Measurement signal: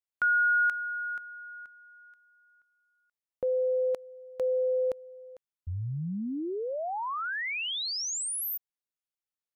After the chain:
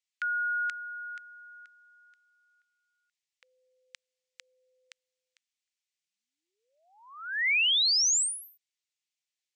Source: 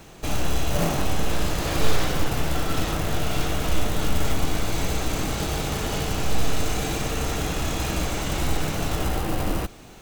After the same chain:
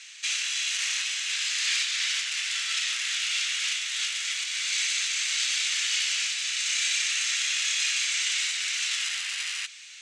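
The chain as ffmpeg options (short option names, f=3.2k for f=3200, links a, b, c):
-af "alimiter=limit=-13dB:level=0:latency=1:release=303,asuperpass=centerf=4100:order=8:qfactor=0.66,volume=8.5dB"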